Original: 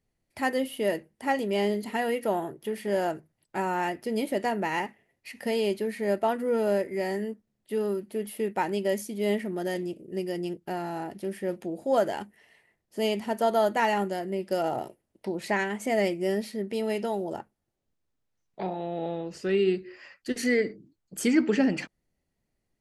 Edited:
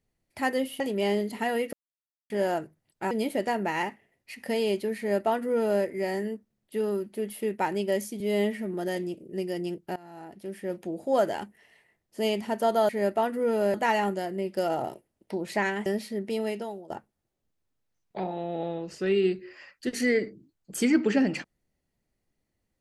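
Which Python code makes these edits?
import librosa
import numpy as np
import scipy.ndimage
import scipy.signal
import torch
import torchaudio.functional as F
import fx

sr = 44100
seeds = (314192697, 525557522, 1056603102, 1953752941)

y = fx.edit(x, sr, fx.cut(start_s=0.8, length_s=0.53),
    fx.silence(start_s=2.26, length_s=0.57),
    fx.cut(start_s=3.64, length_s=0.44),
    fx.duplicate(start_s=5.95, length_s=0.85, to_s=13.68),
    fx.stretch_span(start_s=9.17, length_s=0.36, factor=1.5),
    fx.fade_in_from(start_s=10.75, length_s=0.96, floor_db=-20.0),
    fx.cut(start_s=15.8, length_s=0.49),
    fx.fade_out_to(start_s=16.81, length_s=0.52, floor_db=-19.0), tone=tone)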